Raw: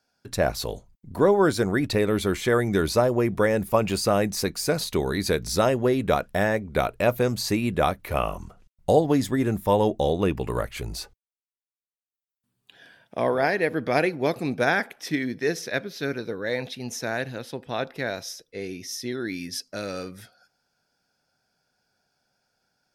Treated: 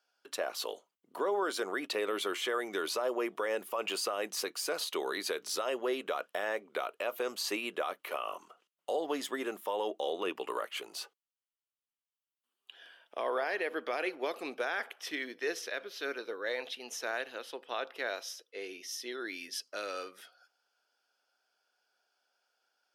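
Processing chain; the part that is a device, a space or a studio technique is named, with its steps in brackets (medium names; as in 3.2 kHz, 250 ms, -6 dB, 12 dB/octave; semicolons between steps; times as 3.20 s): laptop speaker (high-pass 360 Hz 24 dB/octave; peaking EQ 1.2 kHz +7 dB 0.56 oct; peaking EQ 3 kHz +11 dB 0.35 oct; peak limiter -16.5 dBFS, peak gain reduction 12.5 dB); trim -7 dB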